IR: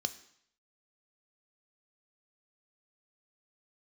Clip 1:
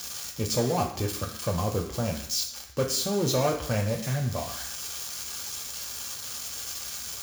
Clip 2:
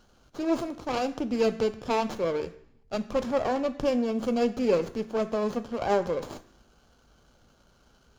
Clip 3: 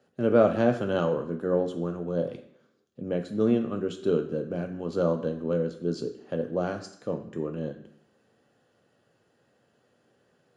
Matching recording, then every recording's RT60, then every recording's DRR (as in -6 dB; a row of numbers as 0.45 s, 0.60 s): 2; 0.65 s, 0.65 s, 0.65 s; 0.5 dB, 10.0 dB, 4.5 dB